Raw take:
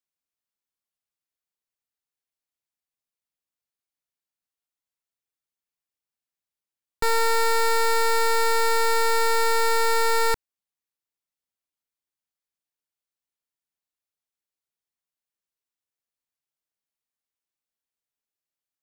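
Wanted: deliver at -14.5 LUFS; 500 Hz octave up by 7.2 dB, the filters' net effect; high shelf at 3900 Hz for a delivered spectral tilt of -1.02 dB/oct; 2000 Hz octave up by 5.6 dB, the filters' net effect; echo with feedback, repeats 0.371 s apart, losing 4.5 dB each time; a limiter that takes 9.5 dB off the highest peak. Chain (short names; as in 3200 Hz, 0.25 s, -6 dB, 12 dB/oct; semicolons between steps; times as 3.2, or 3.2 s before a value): bell 500 Hz +7.5 dB; bell 2000 Hz +4.5 dB; high shelf 3900 Hz +6 dB; limiter -19.5 dBFS; feedback echo 0.371 s, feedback 60%, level -4.5 dB; gain +12.5 dB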